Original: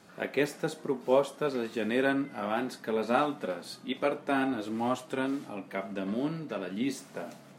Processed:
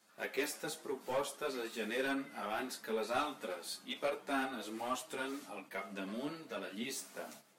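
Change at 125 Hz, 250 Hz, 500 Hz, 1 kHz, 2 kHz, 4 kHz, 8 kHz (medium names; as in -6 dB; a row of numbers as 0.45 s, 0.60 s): -14.5 dB, -11.5 dB, -9.5 dB, -7.0 dB, -5.5 dB, -2.0 dB, +2.0 dB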